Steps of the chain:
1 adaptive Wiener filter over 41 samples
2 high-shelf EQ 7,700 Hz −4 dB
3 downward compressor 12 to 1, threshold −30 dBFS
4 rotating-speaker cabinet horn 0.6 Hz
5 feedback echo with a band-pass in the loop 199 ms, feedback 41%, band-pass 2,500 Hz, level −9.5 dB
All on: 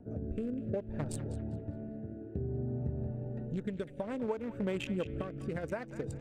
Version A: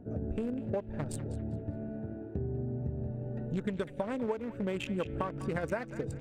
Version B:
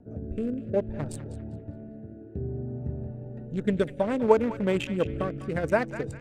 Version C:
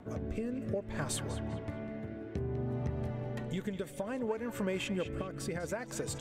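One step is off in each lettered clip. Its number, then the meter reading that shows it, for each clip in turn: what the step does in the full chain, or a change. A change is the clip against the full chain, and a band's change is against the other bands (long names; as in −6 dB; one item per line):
4, 1 kHz band +4.0 dB
3, average gain reduction 4.5 dB
1, 8 kHz band +9.0 dB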